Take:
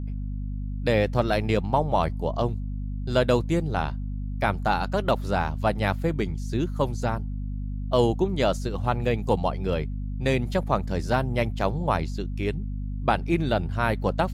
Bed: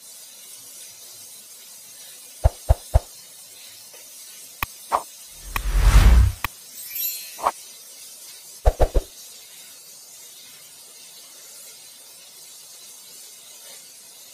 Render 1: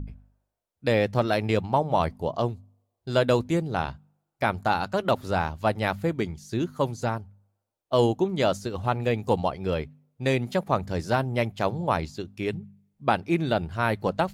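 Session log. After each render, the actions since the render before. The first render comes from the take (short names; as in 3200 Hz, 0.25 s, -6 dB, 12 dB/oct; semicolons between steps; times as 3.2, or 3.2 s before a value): de-hum 50 Hz, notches 5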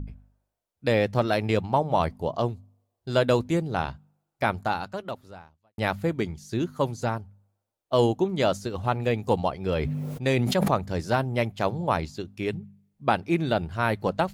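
4.51–5.78 fade out quadratic; 9.68–10.71 sustainer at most 22 dB/s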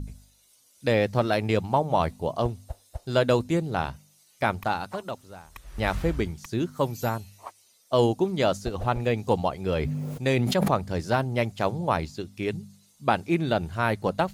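add bed -19.5 dB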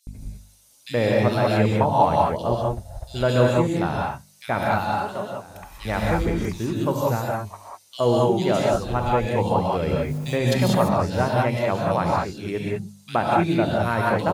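bands offset in time highs, lows 70 ms, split 2700 Hz; non-linear reverb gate 0.22 s rising, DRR -2.5 dB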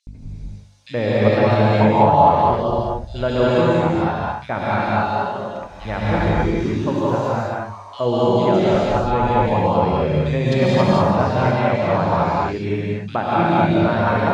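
air absorption 130 m; non-linear reverb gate 0.3 s rising, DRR -3.5 dB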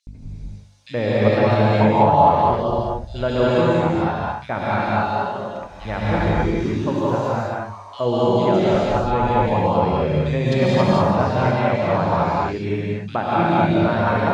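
gain -1 dB; limiter -3 dBFS, peak gain reduction 0.5 dB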